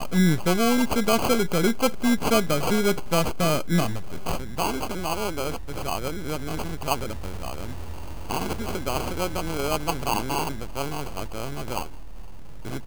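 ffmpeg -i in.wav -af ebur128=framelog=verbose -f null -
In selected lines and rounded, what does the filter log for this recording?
Integrated loudness:
  I:         -26.0 LUFS
  Threshold: -36.4 LUFS
Loudness range:
  LRA:         8.3 LU
  Threshold: -46.9 LUFS
  LRA low:   -31.0 LUFS
  LRA high:  -22.7 LUFS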